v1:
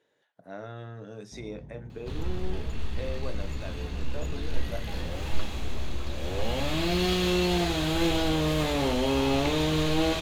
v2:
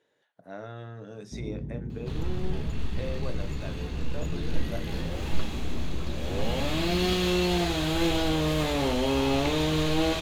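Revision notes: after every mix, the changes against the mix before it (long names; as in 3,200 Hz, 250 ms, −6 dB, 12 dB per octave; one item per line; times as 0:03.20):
first sound: add low shelf with overshoot 510 Hz +9 dB, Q 1.5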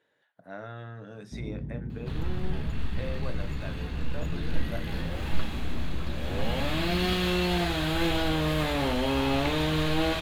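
master: add graphic EQ with 15 bands 400 Hz −4 dB, 1,600 Hz +4 dB, 6,300 Hz −7 dB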